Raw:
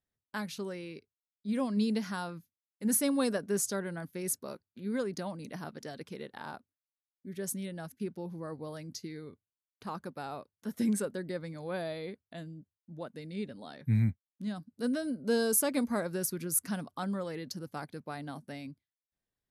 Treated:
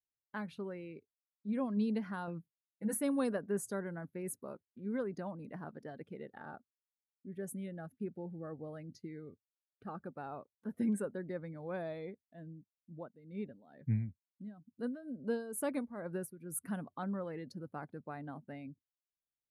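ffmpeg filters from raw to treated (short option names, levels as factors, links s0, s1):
-filter_complex "[0:a]asettb=1/sr,asplit=3[s0][s1][s2];[s0]atrim=end=2.274[s3];[s1]atrim=start=2.27:end=2.94,asetpts=PTS-STARTPTS,afade=t=in:d=0.004:c=qsin,afade=t=out:st=0.666:d=0.004:c=qsin,aecho=1:1:6.1:0.78,atrim=end_sample=29547[s4];[s2]atrim=start=2.936[s5];[s3][s4]acrossfade=d=0.004:c1=hsin:c2=qsin[s6];[s6][s5]acrossfade=d=0.004:c1=qsin:c2=hsin,asettb=1/sr,asplit=3[s7][s8][s9];[s7]atrim=end=6.024[s10];[s8]atrim=start=6.02:end=10.17,asetpts=PTS-STARTPTS,afade=t=in:d=0.004:c=qsin,afade=t=out:st=4.146:d=0.004:c=qsin,asuperstop=centerf=1000:order=4:qfactor=4.7[s11];[s9]atrim=start=10.166[s12];[s10][s11]acrossfade=d=0.004:c1=hsin:c2=qsin[s13];[s13][s12]acrossfade=d=0.004:c1=qsin:c2=hsin,asettb=1/sr,asplit=3[s14][s15][s16];[s14]atrim=end=12.054[s17];[s15]atrim=start=12.05:end=16.62,asetpts=PTS-STARTPTS,afade=t=in:d=0.004:c=qsin,afade=t=out:st=4.566:d=0.004:c=qsin,tremolo=f=2.2:d=0.75[s18];[s16]atrim=start=16.616[s19];[s17][s18]acrossfade=d=0.004:c1=hsin:c2=qsin[s20];[s20][s19]acrossfade=d=0.004:c1=qsin:c2=hsin,lowpass=f=11000:w=0.5412,lowpass=f=11000:w=1.3066,equalizer=f=5700:t=o:w=1.4:g=-14,afftdn=nr=13:nf=-56,volume=0.668"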